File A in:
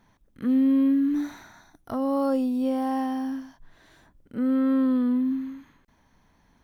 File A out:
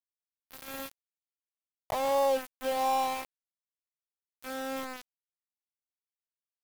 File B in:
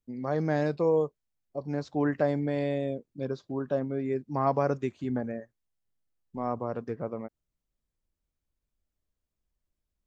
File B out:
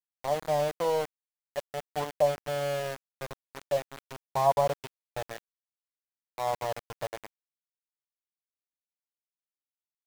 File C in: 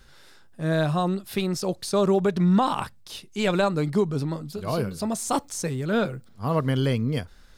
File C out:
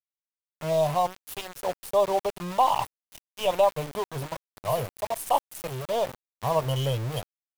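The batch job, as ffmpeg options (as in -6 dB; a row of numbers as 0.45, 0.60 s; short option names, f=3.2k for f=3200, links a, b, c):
-af "firequalizer=gain_entry='entry(130,0);entry(210,-21);entry(590,5);entry(1000,6);entry(1500,-27);entry(2900,5);entry(4100,-12);entry(6900,-12);entry(11000,8)':delay=0.05:min_phase=1,aeval=exprs='0.266*(cos(1*acos(clip(val(0)/0.266,-1,1)))-cos(1*PI/2))+0.00188*(cos(8*acos(clip(val(0)/0.266,-1,1)))-cos(8*PI/2))':c=same,aeval=exprs='val(0)*gte(abs(val(0)),0.0299)':c=same,volume=-1dB"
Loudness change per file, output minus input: -7.0, -0.5, -2.5 LU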